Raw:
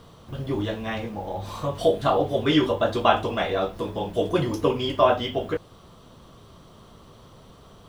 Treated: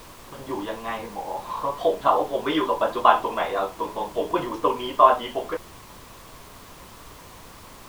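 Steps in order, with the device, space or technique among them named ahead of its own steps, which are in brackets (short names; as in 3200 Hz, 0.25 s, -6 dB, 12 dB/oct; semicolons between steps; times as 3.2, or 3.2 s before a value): horn gramophone (BPF 290–3400 Hz; bell 1000 Hz +12 dB 0.47 oct; wow and flutter; pink noise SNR 20 dB); gain -2 dB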